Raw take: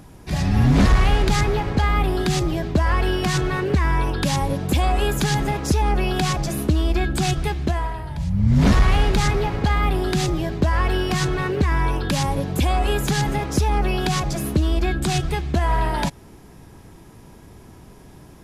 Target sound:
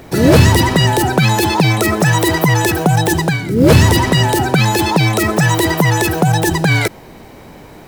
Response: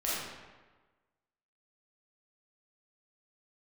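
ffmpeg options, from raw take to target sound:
-af "asetrate=103194,aresample=44100,acrusher=bits=8:mode=log:mix=0:aa=0.000001,volume=2.24"

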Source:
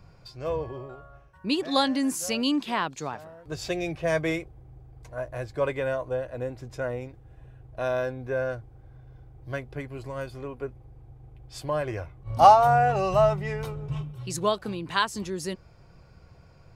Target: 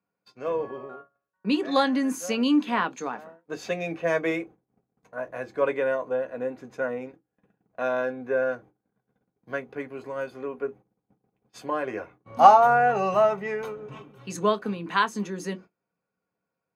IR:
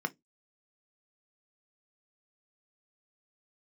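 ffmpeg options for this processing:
-filter_complex "[0:a]agate=range=0.0447:threshold=0.00631:ratio=16:detection=peak,highpass=67[s0];[1:a]atrim=start_sample=2205,asetrate=52920,aresample=44100[s1];[s0][s1]afir=irnorm=-1:irlink=0,volume=0.794"

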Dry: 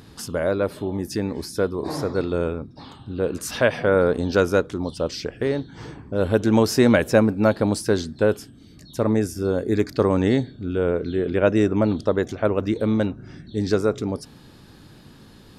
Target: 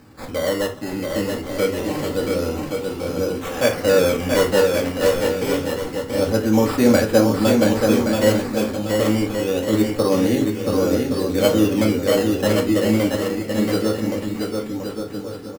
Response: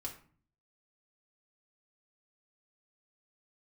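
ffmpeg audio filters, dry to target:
-filter_complex "[0:a]highpass=f=170:p=1,acrusher=samples=13:mix=1:aa=0.000001:lfo=1:lforange=13:lforate=0.26,aecho=1:1:680|1122|1409|1596|1717:0.631|0.398|0.251|0.158|0.1[s0];[1:a]atrim=start_sample=2205,atrim=end_sample=3969[s1];[s0][s1]afir=irnorm=-1:irlink=0,volume=1.26"

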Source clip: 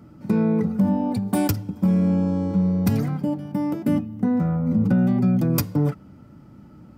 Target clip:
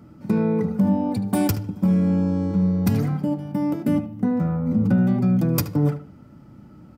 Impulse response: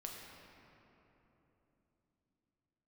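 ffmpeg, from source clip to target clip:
-filter_complex "[0:a]asplit=2[s0][s1];[s1]adelay=75,lowpass=f=3400:p=1,volume=0.266,asplit=2[s2][s3];[s3]adelay=75,lowpass=f=3400:p=1,volume=0.25,asplit=2[s4][s5];[s5]adelay=75,lowpass=f=3400:p=1,volume=0.25[s6];[s0][s2][s4][s6]amix=inputs=4:normalize=0"

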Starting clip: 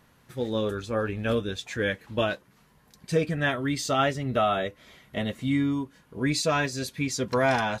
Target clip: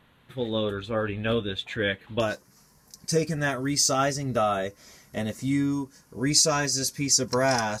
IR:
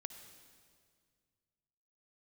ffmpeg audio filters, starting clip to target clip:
-af "asetnsamples=n=441:p=0,asendcmd='2.2 highshelf g 8',highshelf=f=4300:t=q:w=3:g=-6"

